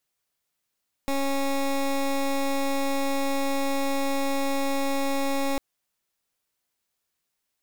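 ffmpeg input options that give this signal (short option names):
-f lavfi -i "aevalsrc='0.0562*(2*lt(mod(275*t,1),0.18)-1)':d=4.5:s=44100"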